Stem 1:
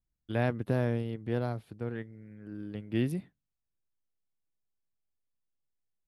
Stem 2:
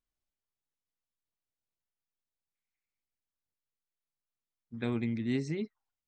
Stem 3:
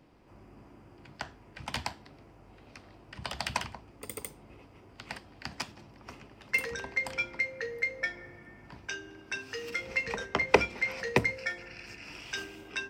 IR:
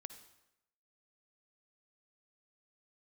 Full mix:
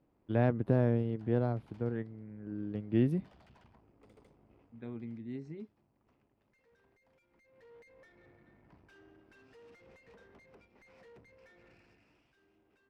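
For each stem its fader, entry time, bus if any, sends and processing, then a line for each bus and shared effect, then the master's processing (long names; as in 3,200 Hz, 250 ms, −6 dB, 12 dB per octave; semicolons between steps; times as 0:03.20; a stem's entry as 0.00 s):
−1.0 dB, 0.00 s, no send, no processing
−13.0 dB, 0.00 s, no send, no processing
0:04.67 −9 dB → 0:05.21 −19 dB → 0:07.27 −19 dB → 0:07.75 −8 dB → 0:11.72 −8 dB → 0:12.35 −19.5 dB, 0.00 s, no send, low-pass filter 6,500 Hz; downward compressor 8 to 1, threshold −36 dBFS, peak gain reduction 21 dB; tube saturation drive 48 dB, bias 0.8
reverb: not used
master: high-pass filter 440 Hz 6 dB per octave; spectral tilt −4.5 dB per octave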